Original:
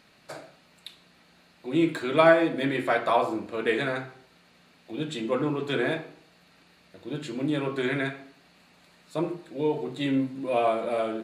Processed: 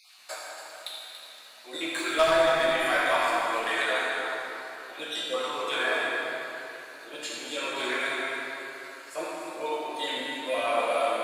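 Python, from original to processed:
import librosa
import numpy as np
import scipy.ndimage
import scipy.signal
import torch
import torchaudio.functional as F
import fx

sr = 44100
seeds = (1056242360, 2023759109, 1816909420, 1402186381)

p1 = fx.spec_dropout(x, sr, seeds[0], share_pct=29)
p2 = scipy.signal.sosfilt(scipy.signal.butter(2, 810.0, 'highpass', fs=sr, output='sos'), p1)
p3 = fx.high_shelf(p2, sr, hz=4300.0, db=10.0)
p4 = fx.level_steps(p3, sr, step_db=21)
p5 = p3 + (p4 * librosa.db_to_amplitude(0.5))
p6 = 10.0 ** (-17.0 / 20.0) * np.tanh(p5 / 10.0 ** (-17.0 / 20.0))
p7 = p6 + fx.echo_single(p6, sr, ms=284, db=-9.5, dry=0)
p8 = fx.rev_plate(p7, sr, seeds[1], rt60_s=3.6, hf_ratio=0.55, predelay_ms=0, drr_db=-6.5)
y = p8 * librosa.db_to_amplitude(-4.0)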